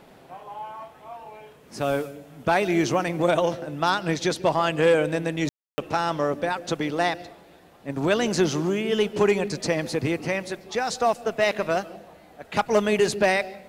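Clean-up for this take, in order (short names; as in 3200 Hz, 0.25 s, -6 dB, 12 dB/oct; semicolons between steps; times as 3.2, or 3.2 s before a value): clip repair -9.5 dBFS; room tone fill 5.49–5.78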